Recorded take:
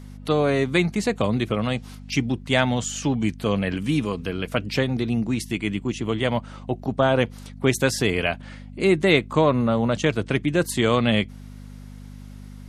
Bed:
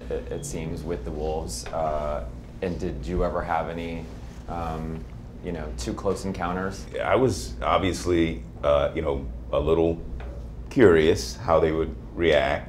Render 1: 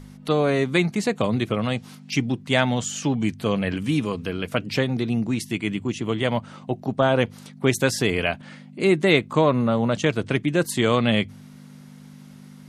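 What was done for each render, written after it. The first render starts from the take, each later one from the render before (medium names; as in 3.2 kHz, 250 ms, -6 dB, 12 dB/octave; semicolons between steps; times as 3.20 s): de-hum 50 Hz, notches 2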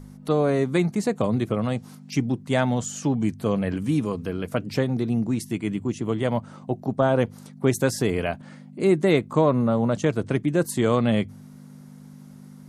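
peaking EQ 2.9 kHz -10 dB 1.7 oct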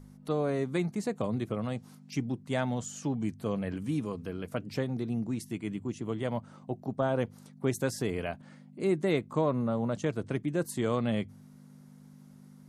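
trim -8.5 dB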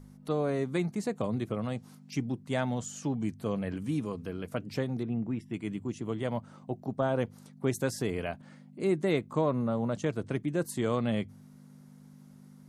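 5.03–5.54 s: Savitzky-Golay filter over 25 samples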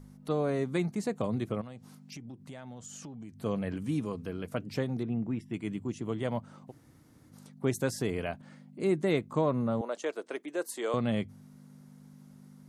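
1.61–3.38 s: compression 8:1, threshold -41 dBFS; 6.69–7.31 s: room tone, crossfade 0.06 s; 9.81–10.94 s: high-pass 370 Hz 24 dB/octave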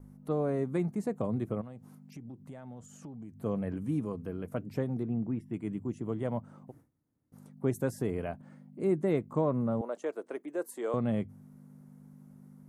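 gate with hold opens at -47 dBFS; peaking EQ 4.2 kHz -14.5 dB 2.2 oct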